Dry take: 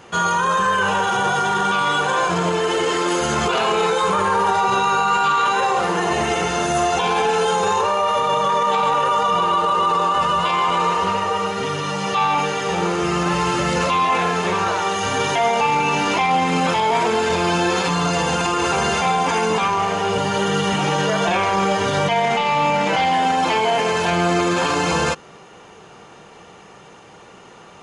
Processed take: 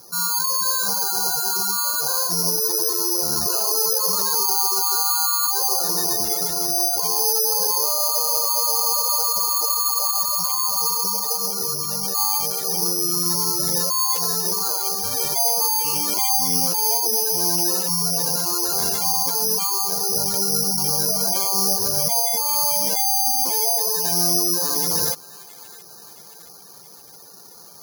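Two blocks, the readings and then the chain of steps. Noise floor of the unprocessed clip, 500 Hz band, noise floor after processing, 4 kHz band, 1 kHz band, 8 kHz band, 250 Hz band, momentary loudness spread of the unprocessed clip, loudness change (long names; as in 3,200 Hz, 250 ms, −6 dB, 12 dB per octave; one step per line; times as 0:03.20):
−44 dBFS, −10.0 dB, −44 dBFS, +2.0 dB, −11.0 dB, +11.5 dB, −10.0 dB, 3 LU, +0.5 dB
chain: low-pass filter 2,900 Hz 24 dB per octave
gate on every frequency bin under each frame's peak −10 dB strong
dynamic equaliser 1,600 Hz, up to −4 dB, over −30 dBFS, Q 0.78
delay with a high-pass on its return 671 ms, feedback 57%, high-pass 1,700 Hz, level −11 dB
bad sample-rate conversion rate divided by 8×, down filtered, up zero stuff
level −8 dB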